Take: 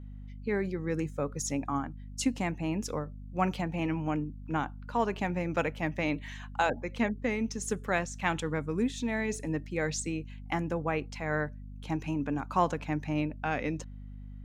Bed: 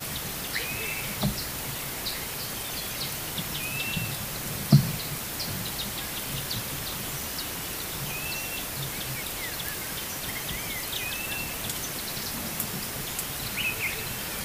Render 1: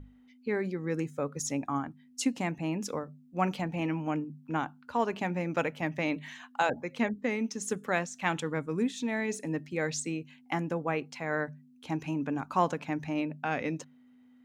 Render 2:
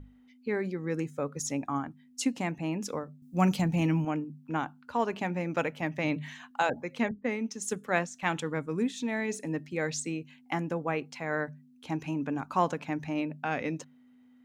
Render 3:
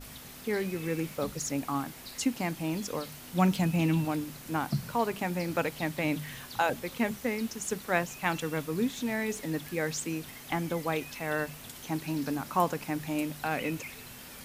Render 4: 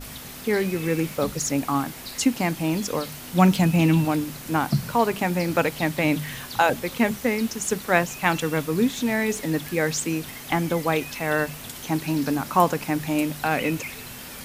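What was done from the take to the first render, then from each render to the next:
hum notches 50/100/150/200 Hz
3.22–4.05 s: tone controls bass +10 dB, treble +12 dB; 6.04–6.51 s: peaking EQ 130 Hz +11 dB; 7.11–8.23 s: three bands expanded up and down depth 70%
add bed -13.5 dB
trim +8 dB

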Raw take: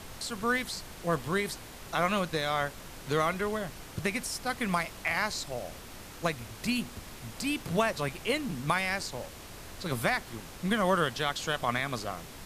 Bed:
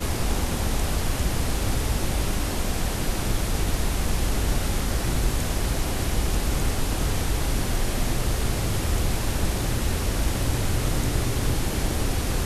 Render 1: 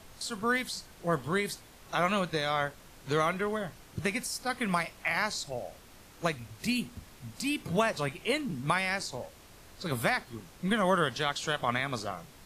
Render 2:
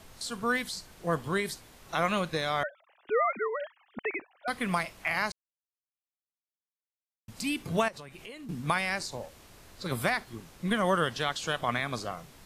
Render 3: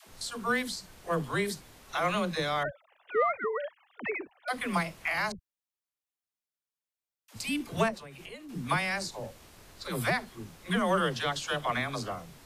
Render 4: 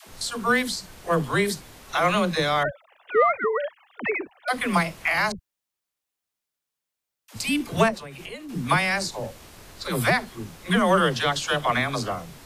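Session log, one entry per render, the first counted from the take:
noise print and reduce 8 dB
2.63–4.48 s: formants replaced by sine waves; 5.32–7.28 s: mute; 7.88–8.49 s: compression 8:1, threshold -41 dBFS
saturation -13 dBFS, distortion -26 dB; phase dispersion lows, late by 80 ms, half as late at 390 Hz
trim +7.5 dB

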